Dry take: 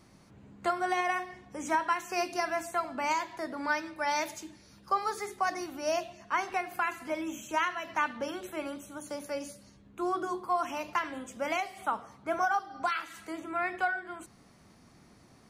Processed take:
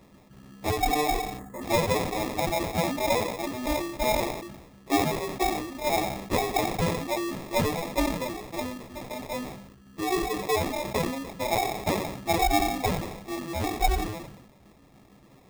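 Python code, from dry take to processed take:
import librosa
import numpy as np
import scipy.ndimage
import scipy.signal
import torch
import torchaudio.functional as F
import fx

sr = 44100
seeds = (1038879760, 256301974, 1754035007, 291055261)

p1 = fx.frame_reverse(x, sr, frame_ms=30.0)
p2 = fx.dereverb_blind(p1, sr, rt60_s=0.52)
p3 = p2 + fx.echo_feedback(p2, sr, ms=88, feedback_pct=55, wet_db=-23, dry=0)
p4 = fx.sample_hold(p3, sr, seeds[0], rate_hz=1500.0, jitter_pct=0)
p5 = fx.spec_box(p4, sr, start_s=1.39, length_s=0.23, low_hz=2100.0, high_hz=6400.0, gain_db=-16)
p6 = fx.sustainer(p5, sr, db_per_s=56.0)
y = p6 * 10.0 ** (7.0 / 20.0)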